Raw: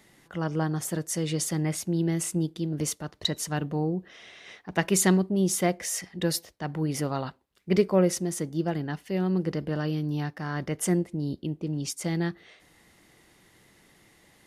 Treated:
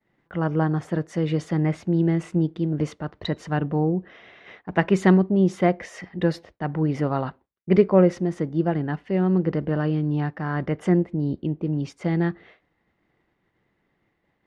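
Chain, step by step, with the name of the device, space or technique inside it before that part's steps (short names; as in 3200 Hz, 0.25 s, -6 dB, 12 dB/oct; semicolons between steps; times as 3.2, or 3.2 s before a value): hearing-loss simulation (LPF 2000 Hz 12 dB/oct; expander -50 dBFS); gain +5.5 dB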